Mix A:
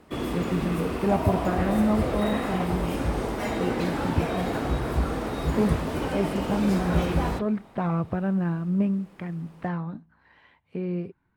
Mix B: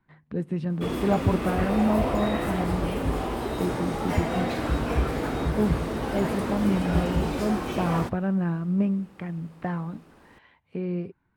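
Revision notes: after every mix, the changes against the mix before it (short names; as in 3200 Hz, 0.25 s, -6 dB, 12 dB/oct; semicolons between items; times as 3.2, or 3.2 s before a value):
first sound: entry +0.70 s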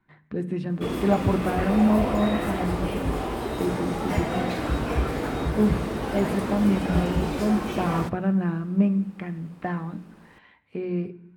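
reverb: on, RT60 0.70 s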